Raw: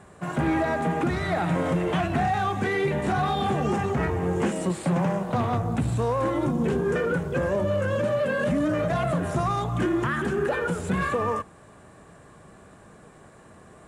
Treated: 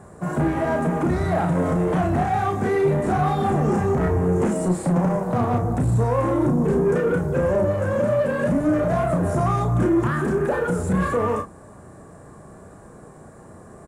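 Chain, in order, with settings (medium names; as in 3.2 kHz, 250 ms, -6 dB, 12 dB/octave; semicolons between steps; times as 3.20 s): peaking EQ 3 kHz -15 dB 1.5 oct; saturation -21.5 dBFS, distortion -16 dB; doubling 33 ms -5 dB; trim +6 dB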